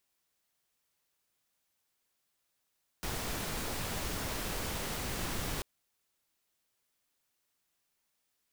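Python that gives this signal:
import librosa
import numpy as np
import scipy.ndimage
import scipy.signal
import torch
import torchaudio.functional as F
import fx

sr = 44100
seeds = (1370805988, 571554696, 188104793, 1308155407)

y = fx.noise_colour(sr, seeds[0], length_s=2.59, colour='pink', level_db=-36.5)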